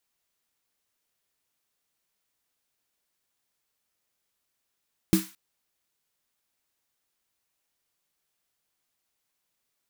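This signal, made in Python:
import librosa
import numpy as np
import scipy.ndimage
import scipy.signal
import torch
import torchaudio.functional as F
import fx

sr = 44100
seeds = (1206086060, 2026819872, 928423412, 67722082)

y = fx.drum_snare(sr, seeds[0], length_s=0.22, hz=190.0, second_hz=320.0, noise_db=-11.5, noise_from_hz=1000.0, decay_s=0.2, noise_decay_s=0.4)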